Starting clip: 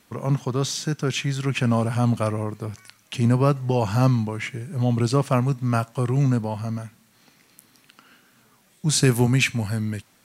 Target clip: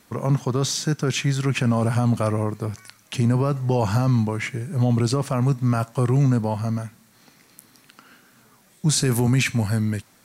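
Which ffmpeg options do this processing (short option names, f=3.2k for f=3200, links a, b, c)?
-af "equalizer=f=2.9k:w=2.1:g=-4,alimiter=limit=-15dB:level=0:latency=1:release=27,volume=3.5dB"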